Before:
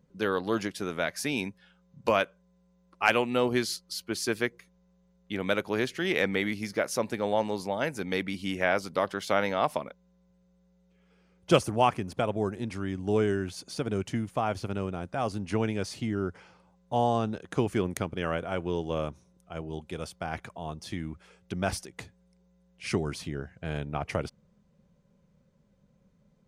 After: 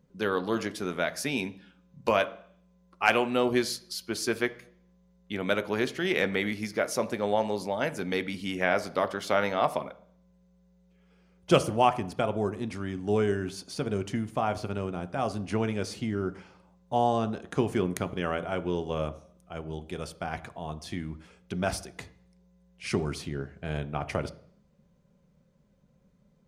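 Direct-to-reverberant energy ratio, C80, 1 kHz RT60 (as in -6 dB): 10.5 dB, 20.5 dB, 0.55 s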